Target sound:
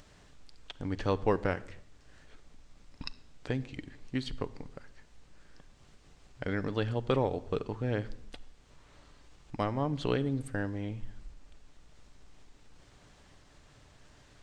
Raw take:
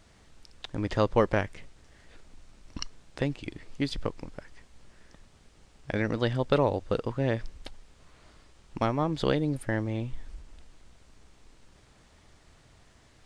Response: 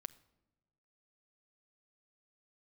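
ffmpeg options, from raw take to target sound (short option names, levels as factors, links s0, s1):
-filter_complex "[0:a]acompressor=mode=upward:threshold=0.00501:ratio=2.5[s0];[1:a]atrim=start_sample=2205,afade=t=out:st=0.35:d=0.01,atrim=end_sample=15876[s1];[s0][s1]afir=irnorm=-1:irlink=0,asetrate=40517,aresample=44100"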